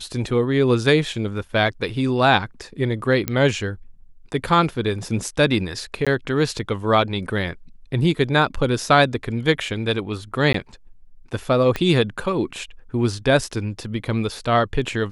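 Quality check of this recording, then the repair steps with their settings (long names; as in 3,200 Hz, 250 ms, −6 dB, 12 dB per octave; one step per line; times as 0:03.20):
0:03.28: click −8 dBFS
0:06.05–0:06.07: drop-out 16 ms
0:10.53–0:10.54: drop-out 13 ms
0:11.76: click −10 dBFS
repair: click removal
repair the gap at 0:06.05, 16 ms
repair the gap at 0:10.53, 13 ms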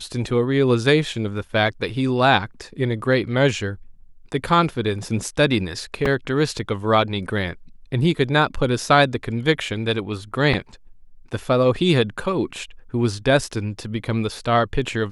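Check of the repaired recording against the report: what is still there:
0:11.76: click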